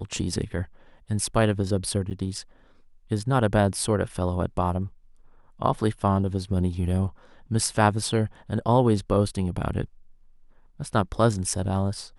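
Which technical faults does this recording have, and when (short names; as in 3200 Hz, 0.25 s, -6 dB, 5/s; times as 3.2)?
2.1–2.11 gap 8.5 ms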